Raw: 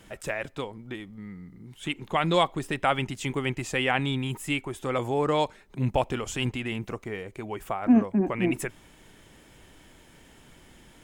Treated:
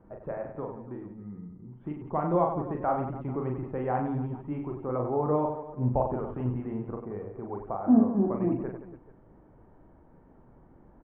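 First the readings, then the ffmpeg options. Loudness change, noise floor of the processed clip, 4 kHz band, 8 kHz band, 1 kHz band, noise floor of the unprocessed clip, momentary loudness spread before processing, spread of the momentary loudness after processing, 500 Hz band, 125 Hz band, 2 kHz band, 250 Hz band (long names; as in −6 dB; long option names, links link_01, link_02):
−2.0 dB, −57 dBFS, below −35 dB, below −40 dB, −2.5 dB, −55 dBFS, 14 LU, 15 LU, −1.0 dB, −1.0 dB, −18.5 dB, −0.5 dB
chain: -filter_complex "[0:a]lowpass=frequency=1100:width=0.5412,lowpass=frequency=1100:width=1.3066,asplit=2[link_01][link_02];[link_02]aecho=0:1:40|96|174.4|284.2|437.8:0.631|0.398|0.251|0.158|0.1[link_03];[link_01][link_03]amix=inputs=2:normalize=0,volume=-3dB"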